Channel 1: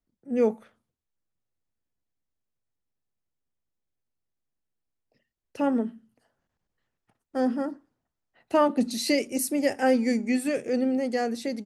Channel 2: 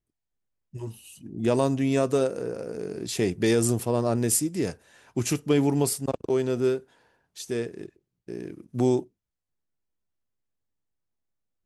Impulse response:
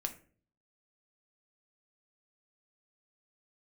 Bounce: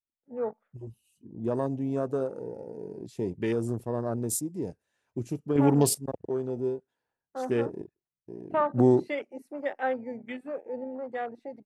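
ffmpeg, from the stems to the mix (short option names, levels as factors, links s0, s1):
-filter_complex "[0:a]acrossover=split=550 2500:gain=0.178 1 0.126[s0][s1][s2];[s0][s1][s2]amix=inputs=3:normalize=0,adynamicequalizer=threshold=0.00501:dfrequency=2300:dqfactor=0.7:tfrequency=2300:tqfactor=0.7:attack=5:release=100:ratio=0.375:range=2:mode=cutabove:tftype=highshelf,volume=0.841,asplit=2[s3][s4];[1:a]volume=1.26[s5];[s4]apad=whole_len=513787[s6];[s5][s6]sidechaingate=range=0.398:threshold=0.00224:ratio=16:detection=peak[s7];[s3][s7]amix=inputs=2:normalize=0,afwtdn=0.0126"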